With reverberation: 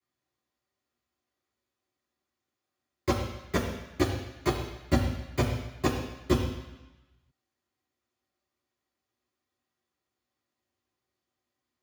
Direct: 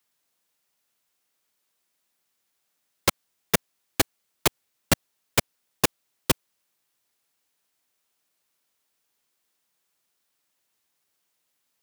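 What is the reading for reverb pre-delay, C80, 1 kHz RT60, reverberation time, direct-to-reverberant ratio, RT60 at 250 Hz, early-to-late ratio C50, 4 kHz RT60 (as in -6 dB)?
3 ms, 7.0 dB, 1.1 s, 1.0 s, -12.0 dB, 1.0 s, 5.0 dB, 1.1 s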